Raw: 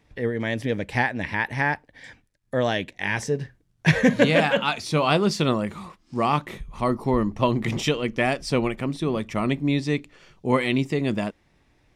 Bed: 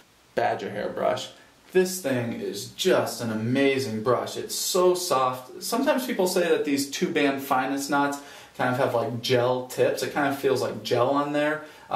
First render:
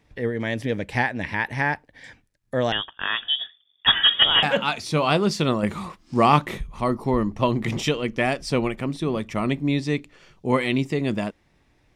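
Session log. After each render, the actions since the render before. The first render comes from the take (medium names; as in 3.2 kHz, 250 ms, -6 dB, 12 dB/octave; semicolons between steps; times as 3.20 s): 2.72–4.43 s: frequency inversion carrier 3.5 kHz; 5.63–6.67 s: gain +5.5 dB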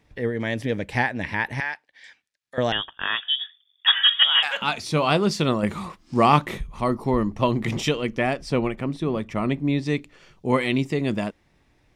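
1.60–2.58 s: band-pass filter 3.6 kHz, Q 0.7; 3.20–4.62 s: high-pass 1.2 kHz; 8.18–9.86 s: treble shelf 3.4 kHz -7.5 dB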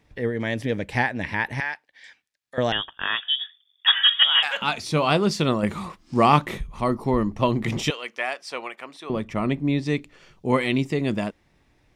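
7.90–9.10 s: high-pass 840 Hz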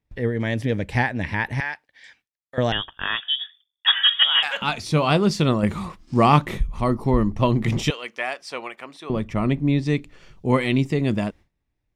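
gate with hold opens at -47 dBFS; bass shelf 130 Hz +10.5 dB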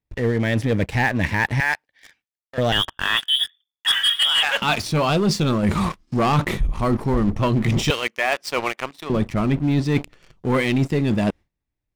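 waveshaping leveller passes 3; reverse; compression, threshold -17 dBFS, peak gain reduction 11 dB; reverse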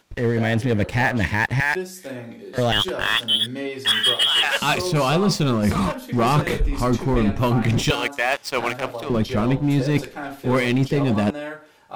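add bed -7.5 dB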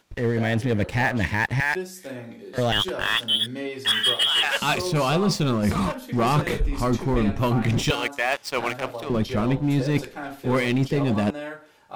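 trim -2.5 dB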